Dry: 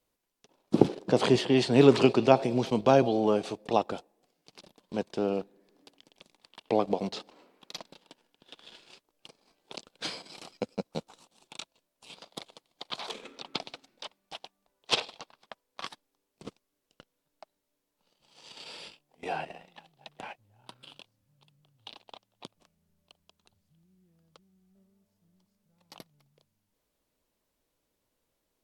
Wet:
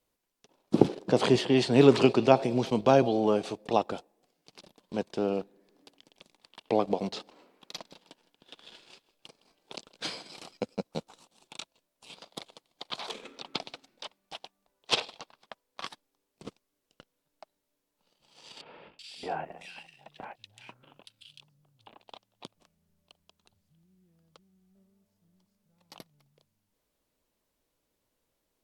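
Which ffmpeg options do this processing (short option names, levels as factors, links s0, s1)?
-filter_complex "[0:a]asettb=1/sr,asplit=3[s0][s1][s2];[s0]atrim=end=7.734[s3];[s1]atrim=start=7.73:end=10.42,asetpts=PTS-STARTPTS,afade=t=in:d=0.004:c=qsin,afade=t=out:st=2.686:d=0.004:c=qsin,aecho=1:1:162|324|486:0.1|0.035|0.0123,atrim=end_sample=118629[s4];[s2]atrim=start=10.416[s5];[s3][s4]acrossfade=d=0.004:c1=hsin:c2=qsin[s6];[s6][s5]acrossfade=d=0.004:c1=qsin:c2=hsin,asettb=1/sr,asplit=3[s7][s8][s9];[s7]atrim=end=18.614[s10];[s8]atrim=start=18.61:end=22.01,asetpts=PTS-STARTPTS,afade=t=in:d=0.004:c=qsin,afade=t=out:st=3.396:d=0.004:c=qsin,acrossover=split=2200[s11][s12];[s12]adelay=380[s13];[s11][s13]amix=inputs=2:normalize=0,atrim=end_sample=149940[s14];[s9]atrim=start=22.006[s15];[s10][s14]acrossfade=d=0.004:c1=hsin:c2=qsin[s16];[s16][s15]acrossfade=d=0.004:c1=qsin:c2=hsin"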